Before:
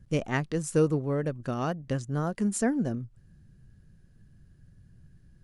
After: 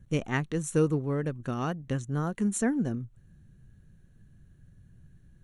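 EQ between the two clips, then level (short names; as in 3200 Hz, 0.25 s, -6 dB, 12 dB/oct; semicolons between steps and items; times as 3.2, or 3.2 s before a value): dynamic EQ 610 Hz, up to -6 dB, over -46 dBFS, Q 2.7; Butterworth band-stop 4900 Hz, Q 4.5; 0.0 dB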